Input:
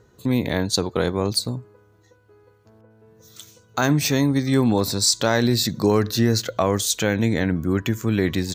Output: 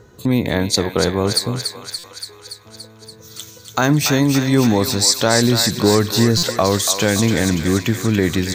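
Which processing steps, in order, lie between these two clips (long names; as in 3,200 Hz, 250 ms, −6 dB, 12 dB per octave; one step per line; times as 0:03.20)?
in parallel at +0.5 dB: downward compressor, threshold −33 dBFS, peak gain reduction 18.5 dB
on the sum: feedback echo with a high-pass in the loop 286 ms, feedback 71%, high-pass 880 Hz, level −6 dB
buffer that repeats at 0:01.98/0:06.37, samples 256, times 9
level +2.5 dB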